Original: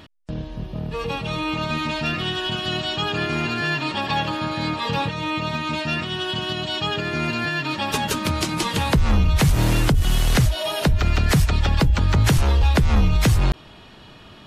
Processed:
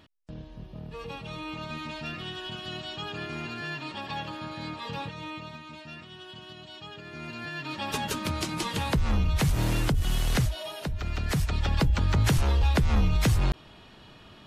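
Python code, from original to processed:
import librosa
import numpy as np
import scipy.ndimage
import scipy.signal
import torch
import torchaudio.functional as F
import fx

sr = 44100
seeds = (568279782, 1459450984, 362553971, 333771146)

y = fx.gain(x, sr, db=fx.line((5.23, -12.0), (5.67, -19.0), (6.96, -19.0), (7.9, -7.5), (10.4, -7.5), (10.81, -14.5), (11.8, -6.0)))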